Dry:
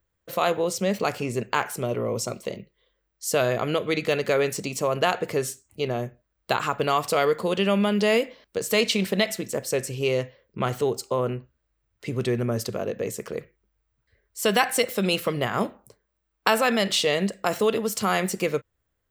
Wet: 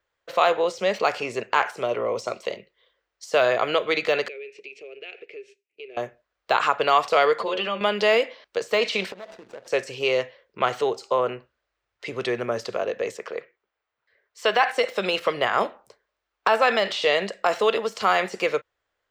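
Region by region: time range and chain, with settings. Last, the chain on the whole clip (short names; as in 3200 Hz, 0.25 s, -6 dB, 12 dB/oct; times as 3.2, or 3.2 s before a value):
4.28–5.97 G.711 law mismatch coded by A + double band-pass 1000 Hz, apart 2.6 oct + compressor 2.5:1, threshold -42 dBFS
7.4–7.81 air absorption 71 m + metallic resonator 67 Hz, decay 0.22 s, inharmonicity 0.008 + fast leveller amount 70%
9.12–9.68 median filter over 41 samples + compressor 5:1, threshold -38 dBFS
13.17–14.68 HPF 300 Hz 6 dB/oct + bell 11000 Hz -10 dB 1.9 oct
whole clip: de-esser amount 70%; three-band isolator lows -19 dB, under 440 Hz, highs -20 dB, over 6100 Hz; gain +6 dB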